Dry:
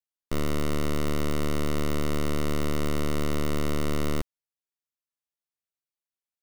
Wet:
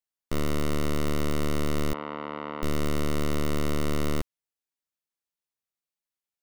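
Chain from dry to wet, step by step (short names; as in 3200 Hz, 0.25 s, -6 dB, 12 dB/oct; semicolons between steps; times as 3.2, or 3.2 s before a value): 1.93–2.63 speaker cabinet 360–2700 Hz, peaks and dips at 380 Hz -8 dB, 600 Hz -4 dB, 890 Hz +9 dB, 1700 Hz -4 dB, 2400 Hz -5 dB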